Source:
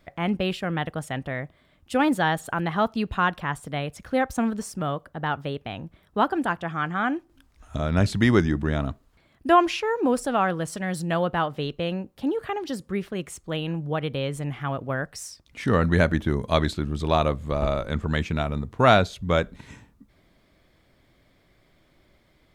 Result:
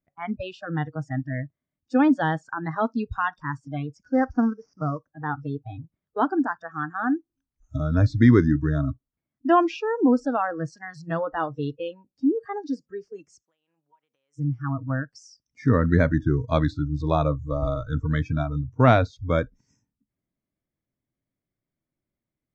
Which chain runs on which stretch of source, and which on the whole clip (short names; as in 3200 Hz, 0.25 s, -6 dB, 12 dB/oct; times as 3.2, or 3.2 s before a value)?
4.12–5.1 CVSD 32 kbps + resonant high shelf 2200 Hz -8 dB, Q 1.5
13.42–14.39 HPF 750 Hz + high shelf 6000 Hz +9.5 dB + compressor 12:1, threshold -41 dBFS
whole clip: steep low-pass 5900 Hz 36 dB/oct; spectral noise reduction 28 dB; ten-band EQ 125 Hz +7 dB, 250 Hz +7 dB, 4000 Hz -8 dB; gain -2 dB